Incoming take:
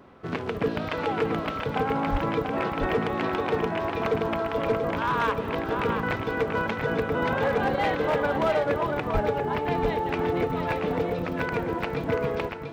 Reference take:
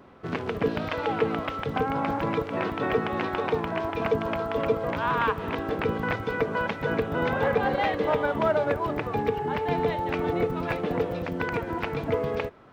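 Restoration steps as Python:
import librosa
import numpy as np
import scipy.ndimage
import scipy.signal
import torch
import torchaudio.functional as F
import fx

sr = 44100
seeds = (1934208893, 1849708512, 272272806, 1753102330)

y = fx.fix_declip(x, sr, threshold_db=-18.0)
y = fx.fix_deplosive(y, sr, at_s=(2.11, 9.13))
y = fx.fix_echo_inverse(y, sr, delay_ms=686, level_db=-6.0)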